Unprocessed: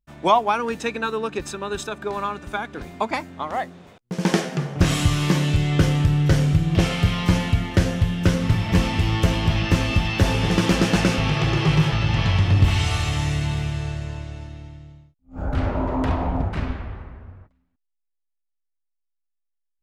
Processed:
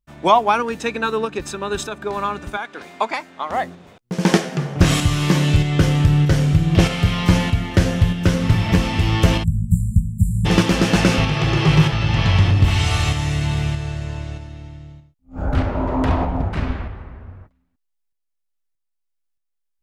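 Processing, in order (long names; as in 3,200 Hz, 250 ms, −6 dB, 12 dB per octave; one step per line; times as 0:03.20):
shaped tremolo saw up 1.6 Hz, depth 40%
0:02.57–0:03.50: meter weighting curve A
0:09.43–0:10.45: time-frequency box erased 230–7,100 Hz
level +5 dB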